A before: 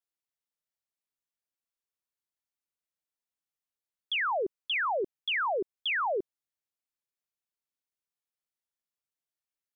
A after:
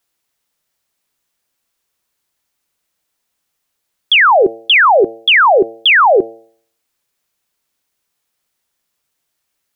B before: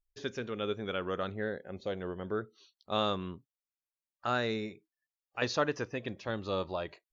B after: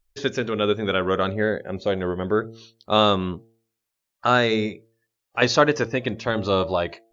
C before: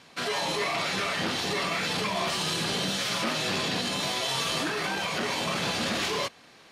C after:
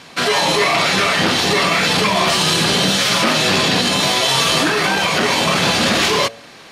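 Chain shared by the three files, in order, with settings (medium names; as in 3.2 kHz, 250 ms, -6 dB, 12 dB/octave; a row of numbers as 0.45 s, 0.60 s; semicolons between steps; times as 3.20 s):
de-hum 113.4 Hz, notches 7; peak normalisation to -3 dBFS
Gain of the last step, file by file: +21.0 dB, +13.0 dB, +13.5 dB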